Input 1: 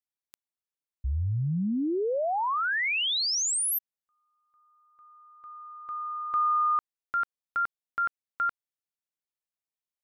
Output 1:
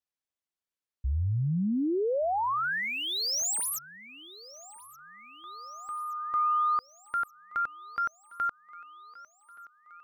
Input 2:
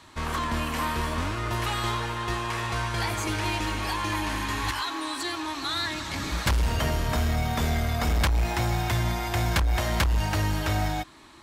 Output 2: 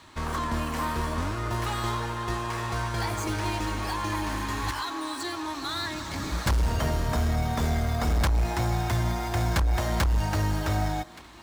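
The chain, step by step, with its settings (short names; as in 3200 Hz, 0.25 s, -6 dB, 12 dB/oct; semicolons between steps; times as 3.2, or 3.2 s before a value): median filter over 3 samples; thinning echo 1.174 s, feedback 62%, high-pass 230 Hz, level -21.5 dB; dynamic EQ 2700 Hz, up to -6 dB, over -45 dBFS, Q 1.1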